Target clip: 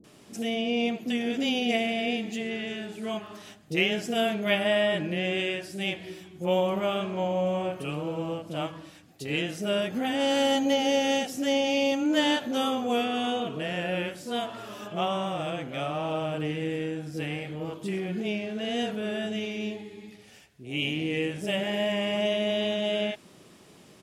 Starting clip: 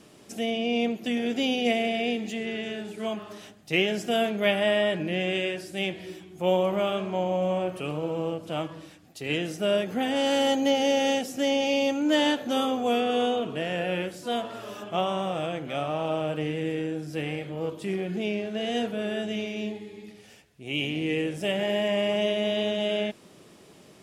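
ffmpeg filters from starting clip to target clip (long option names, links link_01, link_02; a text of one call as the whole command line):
ffmpeg -i in.wav -filter_complex "[0:a]acrossover=split=480[link_01][link_02];[link_02]adelay=40[link_03];[link_01][link_03]amix=inputs=2:normalize=0" out.wav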